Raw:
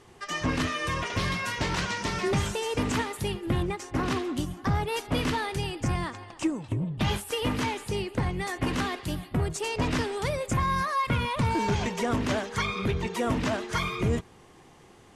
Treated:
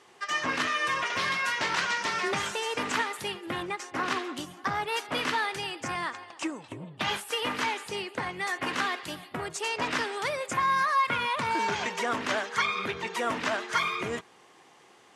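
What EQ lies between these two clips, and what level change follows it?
frequency weighting A; dynamic bell 1.5 kHz, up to +4 dB, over -43 dBFS, Q 1.2; 0.0 dB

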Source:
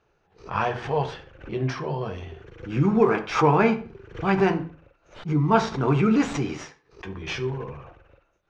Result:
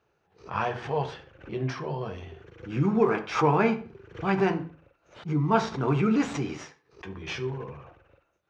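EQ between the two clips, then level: high-pass 66 Hz; -3.5 dB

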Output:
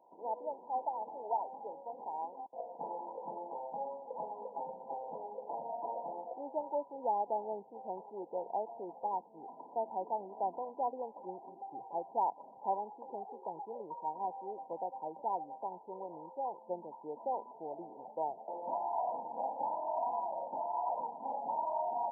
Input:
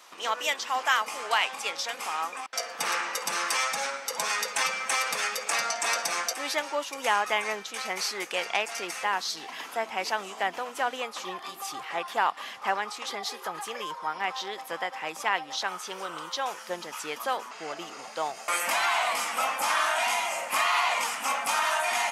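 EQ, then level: brick-wall FIR low-pass 1 kHz; bass shelf 110 Hz -8 dB; -4.0 dB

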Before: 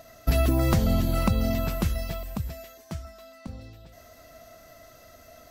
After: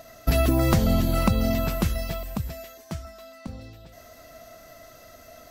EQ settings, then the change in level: peaking EQ 68 Hz -3 dB 1.5 oct; +3.0 dB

